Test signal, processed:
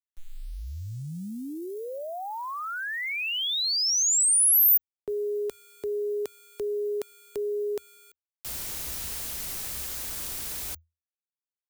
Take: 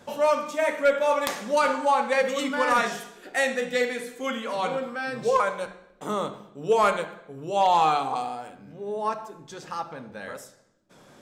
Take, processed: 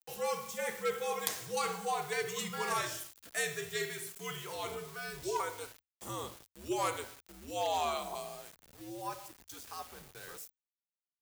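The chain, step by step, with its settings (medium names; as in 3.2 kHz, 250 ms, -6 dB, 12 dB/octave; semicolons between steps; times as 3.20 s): small samples zeroed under -41 dBFS; frequency shift -82 Hz; pre-emphasis filter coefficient 0.8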